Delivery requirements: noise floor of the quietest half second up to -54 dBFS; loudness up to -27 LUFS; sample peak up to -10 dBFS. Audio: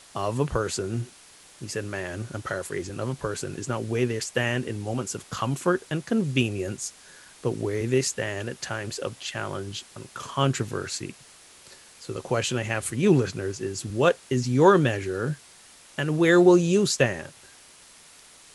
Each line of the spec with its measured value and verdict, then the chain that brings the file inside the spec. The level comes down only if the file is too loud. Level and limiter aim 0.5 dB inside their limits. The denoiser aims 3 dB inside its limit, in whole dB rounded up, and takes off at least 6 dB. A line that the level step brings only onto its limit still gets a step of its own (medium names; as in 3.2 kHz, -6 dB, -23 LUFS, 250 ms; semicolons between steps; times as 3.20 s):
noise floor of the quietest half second -51 dBFS: fail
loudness -26.0 LUFS: fail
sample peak -5.0 dBFS: fail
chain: noise reduction 6 dB, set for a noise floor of -51 dBFS; trim -1.5 dB; peak limiter -10.5 dBFS